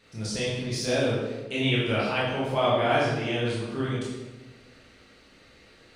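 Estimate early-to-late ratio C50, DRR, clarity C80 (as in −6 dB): −0.5 dB, −8.0 dB, 3.0 dB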